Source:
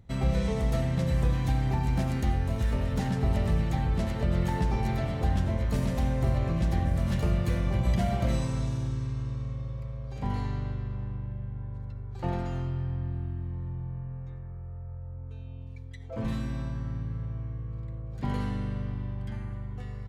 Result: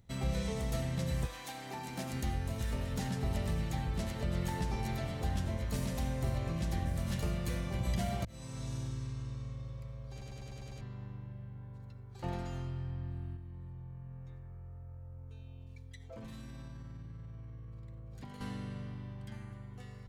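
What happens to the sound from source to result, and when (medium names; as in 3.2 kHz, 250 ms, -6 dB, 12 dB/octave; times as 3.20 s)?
1.25–2.12 s: high-pass 670 Hz -> 170 Hz
8.25–8.76 s: fade in
10.11 s: stutter in place 0.10 s, 7 plays
13.35–18.41 s: compression, threshold -35 dBFS
whole clip: treble shelf 3.4 kHz +10.5 dB; hum notches 50/100 Hz; trim -7.5 dB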